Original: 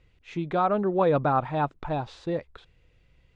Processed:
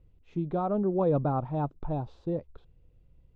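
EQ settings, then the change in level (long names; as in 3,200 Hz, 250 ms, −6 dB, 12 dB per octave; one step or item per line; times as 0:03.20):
spectral tilt −4 dB per octave
low-shelf EQ 96 Hz −11 dB
parametric band 1,900 Hz −9.5 dB 0.94 octaves
−7.0 dB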